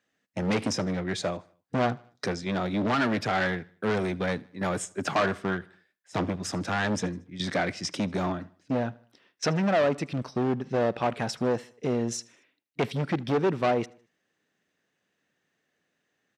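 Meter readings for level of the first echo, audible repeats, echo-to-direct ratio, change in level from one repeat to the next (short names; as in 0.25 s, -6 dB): -24.0 dB, 2, -23.0 dB, -7.0 dB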